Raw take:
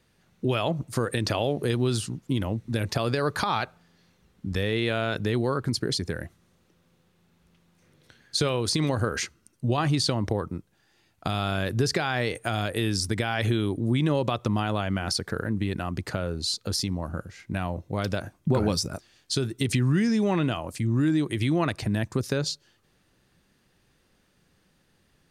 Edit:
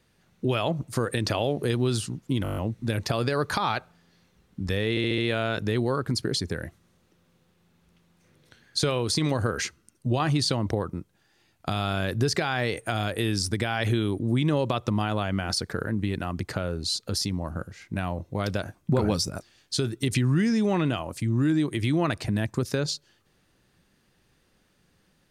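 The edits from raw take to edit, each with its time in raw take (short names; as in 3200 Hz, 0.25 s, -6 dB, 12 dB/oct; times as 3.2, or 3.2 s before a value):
2.43 stutter 0.02 s, 8 plays
4.76 stutter 0.07 s, 5 plays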